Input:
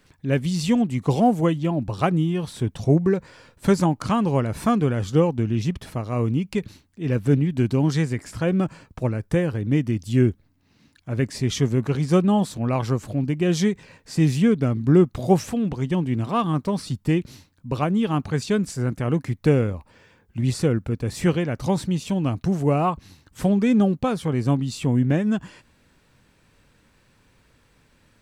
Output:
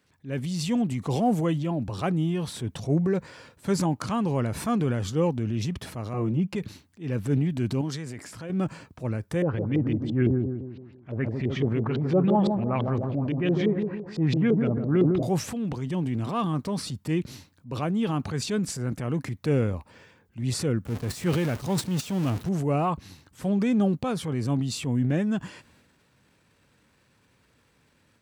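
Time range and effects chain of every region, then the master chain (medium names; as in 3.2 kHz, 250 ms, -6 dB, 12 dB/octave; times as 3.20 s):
6.13–6.56 s: treble shelf 2.4 kHz -11 dB + comb 5.7 ms, depth 98%
7.81–8.50 s: bass shelf 100 Hz -9 dB + compression, threshold -28 dBFS
9.42–15.23 s: feedback echo behind a low-pass 152 ms, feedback 43%, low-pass 820 Hz, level -5.5 dB + LFO low-pass saw up 5.9 Hz 390–4100 Hz
20.85–22.49 s: jump at every zero crossing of -26.5 dBFS + gate -26 dBFS, range -13 dB
whole clip: transient shaper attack -5 dB, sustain +6 dB; level rider gain up to 4.5 dB; high-pass 72 Hz; trim -8.5 dB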